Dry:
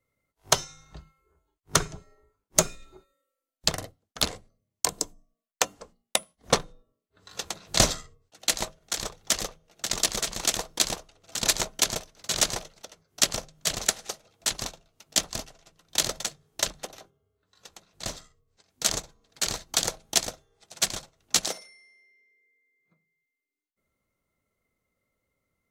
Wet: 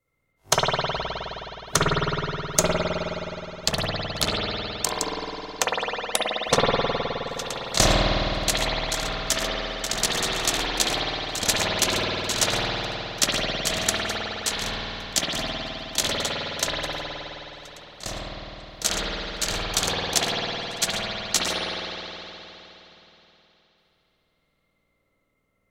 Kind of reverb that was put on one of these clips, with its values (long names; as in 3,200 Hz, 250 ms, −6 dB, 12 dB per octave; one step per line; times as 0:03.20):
spring reverb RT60 3.5 s, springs 52 ms, chirp 20 ms, DRR −7 dB